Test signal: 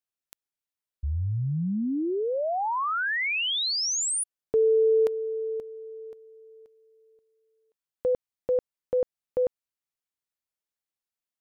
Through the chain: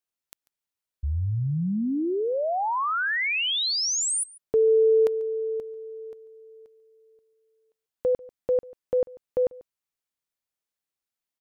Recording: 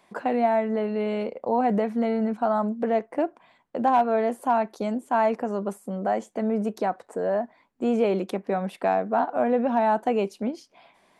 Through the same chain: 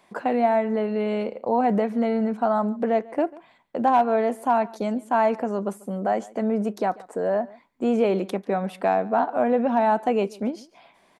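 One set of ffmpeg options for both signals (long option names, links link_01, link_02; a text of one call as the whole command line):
ffmpeg -i in.wav -af "aecho=1:1:142:0.0794,volume=1.5dB" out.wav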